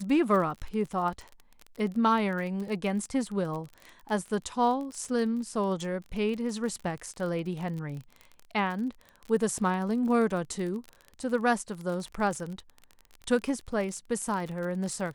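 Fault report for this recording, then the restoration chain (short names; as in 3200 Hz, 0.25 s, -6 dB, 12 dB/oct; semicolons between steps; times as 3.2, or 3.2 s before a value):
crackle 34/s -34 dBFS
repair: de-click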